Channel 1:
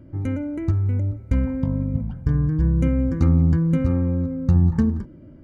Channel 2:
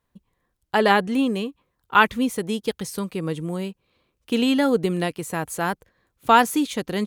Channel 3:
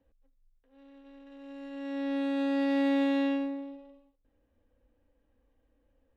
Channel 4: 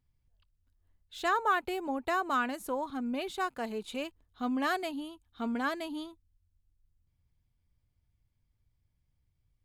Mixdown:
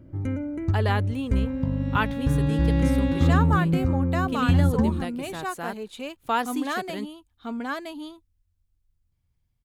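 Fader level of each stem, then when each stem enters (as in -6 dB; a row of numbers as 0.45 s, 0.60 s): -3.0 dB, -9.5 dB, -1.0 dB, +1.5 dB; 0.00 s, 0.00 s, 0.00 s, 2.05 s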